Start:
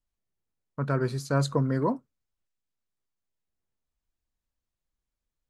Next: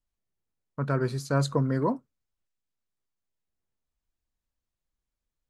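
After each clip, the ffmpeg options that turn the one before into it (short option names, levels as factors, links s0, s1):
-af anull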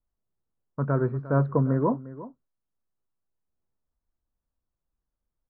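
-af "lowpass=f=1500:w=0.5412,lowpass=f=1500:w=1.3066,aemphasis=mode=reproduction:type=75kf,aecho=1:1:352:0.158,volume=1.33"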